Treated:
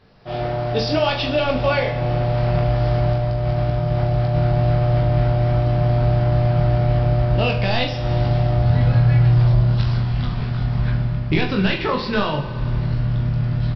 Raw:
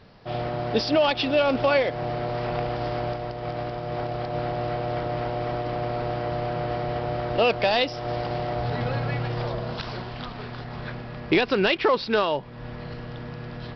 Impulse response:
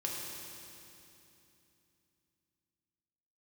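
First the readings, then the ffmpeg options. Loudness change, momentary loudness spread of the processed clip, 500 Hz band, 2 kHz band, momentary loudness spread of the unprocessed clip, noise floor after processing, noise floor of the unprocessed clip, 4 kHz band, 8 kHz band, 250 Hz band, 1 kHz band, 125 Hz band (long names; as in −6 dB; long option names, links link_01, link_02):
+7.0 dB, 6 LU, +2.0 dB, +1.5 dB, 14 LU, −26 dBFS, −38 dBFS, +2.0 dB, can't be measured, +5.5 dB, +1.5 dB, +16.0 dB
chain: -filter_complex "[0:a]asplit=2[link_01][link_02];[1:a]atrim=start_sample=2205,adelay=36[link_03];[link_02][link_03]afir=irnorm=-1:irlink=0,volume=-12.5dB[link_04];[link_01][link_04]amix=inputs=2:normalize=0,asubboost=boost=8:cutoff=150,aecho=1:1:20|43|69.45|99.87|134.8:0.631|0.398|0.251|0.158|0.1,dynaudnorm=framelen=160:gausssize=3:maxgain=6dB,volume=-4.5dB"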